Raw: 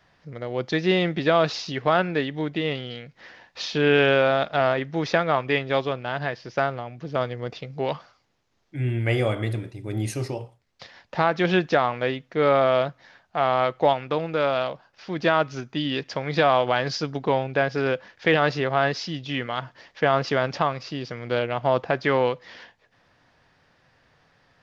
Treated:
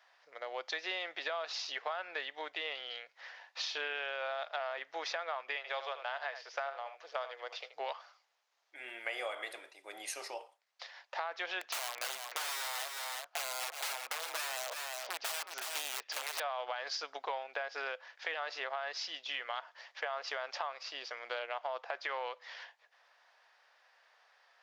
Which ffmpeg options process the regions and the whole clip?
ffmpeg -i in.wav -filter_complex "[0:a]asettb=1/sr,asplit=3[link_01][link_02][link_03];[link_01]atrim=end=5.564[link_04];[link_02]atrim=start=5.56:end=7.75,asetpts=PTS-STARTPTS,afade=type=in:duration=0.004:curve=qsin,afade=type=out:start_time=2.186:duration=0.004:curve=qsin,highpass=frequency=410:width=0.5412,highpass=frequency=410:width=1.3066,aecho=1:1:80:0.237,atrim=end_sample=96579[link_05];[link_03]atrim=start=7.746[link_06];[link_04][link_05]acrossfade=duration=0.004:curve1=hsin:curve2=qsin[link_07];[link_07][link_06]acrossfade=duration=0.004:curve1=qsin:curve2=hsin,asettb=1/sr,asplit=3[link_08][link_09][link_10];[link_08]atrim=end=11.614[link_11];[link_09]atrim=start=11.61:end=16.4,asetpts=PTS-STARTPTS,afade=type=in:duration=0.004:curve=qsin,afade=type=out:start_time=4.786:duration=0.004:curve=qsin,aeval=exprs='(mod(11.2*val(0)+1,2)-1)/11.2':channel_layout=same,aecho=1:1:367:0.335,atrim=end_sample=211239[link_12];[link_10]atrim=start=16.396[link_13];[link_11][link_12]acrossfade=duration=0.004:curve1=hsin:curve2=qsin[link_14];[link_14][link_13]acrossfade=duration=0.004:curve1=qsin:curve2=hsin,highpass=frequency=640:width=0.5412,highpass=frequency=640:width=1.3066,alimiter=limit=-15.5dB:level=0:latency=1:release=26,acompressor=threshold=-31dB:ratio=6,volume=-3.5dB" out.wav

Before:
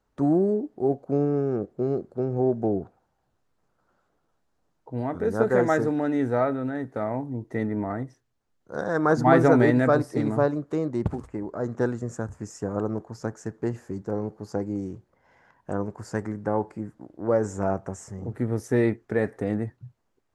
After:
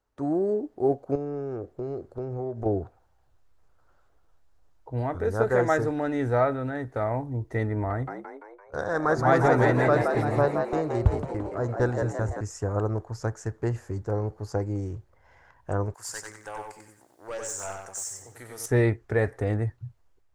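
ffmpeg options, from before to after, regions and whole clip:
ffmpeg -i in.wav -filter_complex "[0:a]asettb=1/sr,asplit=3[link_01][link_02][link_03];[link_01]atrim=end=1.154[link_04];[link_02]atrim=start=1.15:end=2.66,asetpts=PTS-STARTPTS,afade=type=in:duration=0.004:curve=qsin,afade=type=out:start_time=1.506:duration=0.004:curve=qsin,bandreject=frequency=200:width=5.9,acompressor=threshold=-30dB:ratio=3:attack=3.2:release=140:knee=1:detection=peak[link_05];[link_03]atrim=start=2.656[link_06];[link_04][link_05]acrossfade=duration=0.004:curve1=hsin:curve2=qsin[link_07];[link_07][link_06]acrossfade=duration=0.004:curve1=qsin:curve2=hsin,asettb=1/sr,asplit=3[link_08][link_09][link_10];[link_08]atrim=end=7.904[link_11];[link_09]atrim=start=7.9:end=12.41,asetpts=PTS-STARTPTS,afade=type=in:duration=0.004:curve=qsin,afade=type=out:start_time=4.506:duration=0.004:curve=qsin,agate=range=-14dB:threshold=-39dB:ratio=16:release=100:detection=peak,asplit=7[link_12][link_13][link_14][link_15][link_16][link_17][link_18];[link_13]adelay=170,afreqshift=73,volume=-5.5dB[link_19];[link_14]adelay=340,afreqshift=146,volume=-11.3dB[link_20];[link_15]adelay=510,afreqshift=219,volume=-17.2dB[link_21];[link_16]adelay=680,afreqshift=292,volume=-23dB[link_22];[link_17]adelay=850,afreqshift=365,volume=-28.9dB[link_23];[link_18]adelay=1020,afreqshift=438,volume=-34.7dB[link_24];[link_12][link_19][link_20][link_21][link_22][link_23][link_24]amix=inputs=7:normalize=0,atrim=end_sample=198891[link_25];[link_10]atrim=start=12.406[link_26];[link_11][link_25]acrossfade=duration=0.004:curve1=hsin:curve2=qsin[link_27];[link_27][link_26]acrossfade=duration=0.004:curve1=qsin:curve2=hsin,asettb=1/sr,asplit=3[link_28][link_29][link_30];[link_28]atrim=end=15.944[link_31];[link_29]atrim=start=15.94:end=18.66,asetpts=PTS-STARTPTS,afade=type=in:duration=0.004:curve=qsin,afade=type=out:start_time=2.716:duration=0.004:curve=qsin,aderivative,aeval=exprs='0.0282*sin(PI/2*2*val(0)/0.0282)':channel_layout=same,aecho=1:1:93|186|279|372:0.631|0.17|0.046|0.0124,atrim=end_sample=119952[link_32];[link_30]atrim=start=18.656[link_33];[link_31][link_32]acrossfade=duration=0.004:curve1=hsin:curve2=qsin[link_34];[link_34][link_33]acrossfade=duration=0.004:curve1=qsin:curve2=hsin,equalizer=frequency=190:width_type=o:width=0.88:gain=-8,dynaudnorm=framelen=180:gausssize=5:maxgain=7dB,asubboost=boost=4.5:cutoff=100,volume=-4.5dB" out.wav

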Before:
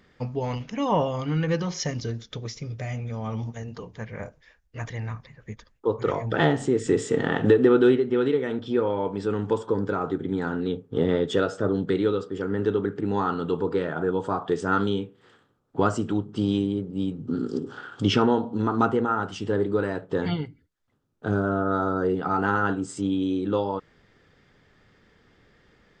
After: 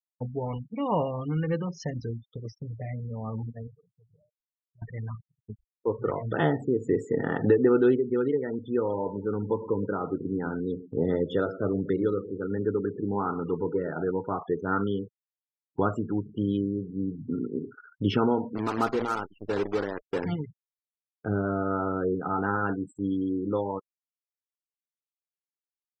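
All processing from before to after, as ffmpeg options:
ffmpeg -i in.wav -filter_complex "[0:a]asettb=1/sr,asplit=3[link_01][link_02][link_03];[link_01]atrim=end=3.674[link_04];[link_02]atrim=start=3.67:end=4.82,asetpts=PTS-STARTPTS,afade=type=in:duration=0.004:curve=qsin,afade=type=out:start_time=1.146:duration=0.004:curve=qsin,aecho=1:1:6.7:0.93,atrim=end_sample=50715,acompressor=threshold=-43dB:ratio=4:attack=3.2:release=140:knee=1:detection=peak[link_05];[link_03]atrim=start=4.816[link_06];[link_04][link_05]acrossfade=duration=0.004:curve1=hsin:curve2=qsin[link_07];[link_07][link_06]acrossfade=duration=0.004:curve1=qsin:curve2=hsin,asettb=1/sr,asplit=3[link_08][link_09][link_10];[link_08]atrim=end=8.804[link_11];[link_09]atrim=start=8.8:end=14.11,asetpts=PTS-STARTPTS,afade=type=in:duration=0.004:curve=qsin,afade=type=out:start_time=5.306:duration=0.004:curve=qsin,highpass=45,acrusher=bits=6:mix=0:aa=0.5,asplit=2[link_12][link_13];[link_13]adelay=114,lowpass=frequency=1900:poles=1,volume=-15dB,asplit=2[link_14][link_15];[link_15]adelay=114,lowpass=frequency=1900:poles=1,volume=0.48,asplit=2[link_16][link_17];[link_17]adelay=114,lowpass=frequency=1900:poles=1,volume=0.48,asplit=2[link_18][link_19];[link_19]adelay=114,lowpass=frequency=1900:poles=1,volume=0.48[link_20];[link_12][link_14][link_16][link_18][link_20]amix=inputs=5:normalize=0,atrim=end_sample=234171[link_21];[link_10]atrim=start=14.106[link_22];[link_11][link_21]acrossfade=duration=0.004:curve1=hsin:curve2=qsin[link_23];[link_23][link_22]acrossfade=duration=0.004:curve1=qsin:curve2=hsin,asettb=1/sr,asplit=3[link_24][link_25][link_26];[link_24]atrim=end=18.554[link_27];[link_25]atrim=start=18.55:end=20.24,asetpts=PTS-STARTPTS,afade=type=in:duration=0.004:curve=qsin,afade=type=out:start_time=1.686:duration=0.004:curve=qsin,bandreject=frequency=2200:width=18,acrusher=bits=5:dc=4:mix=0:aa=0.000001,bass=frequency=250:gain=-6,treble=frequency=4000:gain=4[link_28];[link_26]atrim=start=20.236[link_29];[link_27][link_28]acrossfade=duration=0.004:curve1=hsin:curve2=qsin[link_30];[link_30][link_29]acrossfade=duration=0.004:curve1=qsin:curve2=hsin,afftfilt=real='re*gte(hypot(re,im),0.0316)':imag='im*gte(hypot(re,im),0.0316)':win_size=1024:overlap=0.75,lowpass=frequency=2000:poles=1,agate=range=-33dB:threshold=-37dB:ratio=3:detection=peak,volume=-3dB" out.wav

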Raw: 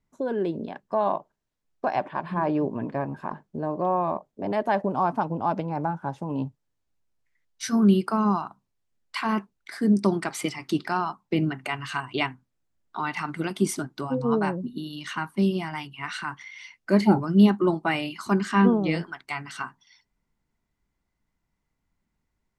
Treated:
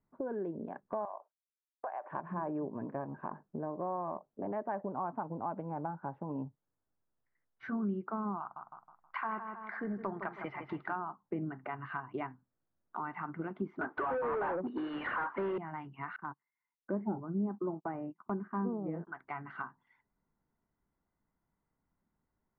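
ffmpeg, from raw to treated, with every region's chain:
ffmpeg -i in.wav -filter_complex "[0:a]asettb=1/sr,asplit=3[link_01][link_02][link_03];[link_01]atrim=end=1.054[link_04];[link_02]atrim=start=1.05:end=2.11,asetpts=PTS-STARTPTS,afade=type=in:duration=0.004:curve=qsin,afade=type=out:start_time=1.056:duration=0.004:curve=qsin,agate=range=-33dB:threshold=-55dB:ratio=3:release=100:detection=peak,highpass=frequency=520:width=0.5412,highpass=frequency=520:width=1.3066,acompressor=threshold=-34dB:ratio=2:attack=3.2:release=140:knee=1:detection=peak[link_05];[link_03]atrim=start=2.106[link_06];[link_04][link_05]acrossfade=duration=0.004:curve1=hsin:curve2=qsin[link_07];[link_07][link_06]acrossfade=duration=0.004:curve1=qsin:curve2=hsin,asettb=1/sr,asplit=3[link_08][link_09][link_10];[link_08]atrim=end=8.404[link_11];[link_09]atrim=start=8.4:end=10.96,asetpts=PTS-STARTPTS,afade=type=in:duration=0.004:curve=qsin,afade=type=out:start_time=2.556:duration=0.004:curve=qsin,acontrast=62,equalizer=frequency=250:width_type=o:width=2.1:gain=-14.5,asplit=2[link_12][link_13];[link_13]adelay=159,lowpass=frequency=4700:poles=1,volume=-10dB,asplit=2[link_14][link_15];[link_15]adelay=159,lowpass=frequency=4700:poles=1,volume=0.38,asplit=2[link_16][link_17];[link_17]adelay=159,lowpass=frequency=4700:poles=1,volume=0.38,asplit=2[link_18][link_19];[link_19]adelay=159,lowpass=frequency=4700:poles=1,volume=0.38[link_20];[link_12][link_14][link_16][link_18][link_20]amix=inputs=5:normalize=0,atrim=end_sample=112896[link_21];[link_10]atrim=start=10.956[link_22];[link_11][link_21]acrossfade=duration=0.004:curve1=hsin:curve2=qsin[link_23];[link_23][link_22]acrossfade=duration=0.004:curve1=qsin:curve2=hsin,asettb=1/sr,asplit=3[link_24][link_25][link_26];[link_24]atrim=end=13.814[link_27];[link_25]atrim=start=13.81:end=15.58,asetpts=PTS-STARTPTS,afade=type=in:duration=0.004:curve=qsin,afade=type=out:start_time=1.766:duration=0.004:curve=qsin,highpass=410,asplit=2[link_28][link_29];[link_29]highpass=frequency=720:poles=1,volume=35dB,asoftclip=type=tanh:threshold=-13.5dB[link_30];[link_28][link_30]amix=inputs=2:normalize=0,lowpass=frequency=4300:poles=1,volume=-6dB[link_31];[link_26]atrim=start=15.576[link_32];[link_27][link_31]acrossfade=duration=0.004:curve1=hsin:curve2=qsin[link_33];[link_33][link_32]acrossfade=duration=0.004:curve1=qsin:curve2=hsin,asettb=1/sr,asplit=3[link_34][link_35][link_36];[link_34]atrim=end=16.164[link_37];[link_35]atrim=start=16.16:end=19.07,asetpts=PTS-STARTPTS,afade=type=in:duration=0.004:curve=qsin,afade=type=out:start_time=2.906:duration=0.004:curve=qsin,agate=range=-27dB:threshold=-35dB:ratio=16:release=100:detection=peak,lowpass=1100[link_38];[link_36]atrim=start=19.066[link_39];[link_37][link_38]acrossfade=duration=0.004:curve1=hsin:curve2=qsin[link_40];[link_40][link_39]acrossfade=duration=0.004:curve1=qsin:curve2=hsin,lowpass=frequency=1600:width=0.5412,lowpass=frequency=1600:width=1.3066,lowshelf=frequency=87:gain=-9.5,acompressor=threshold=-38dB:ratio=2.5,volume=-1dB" out.wav

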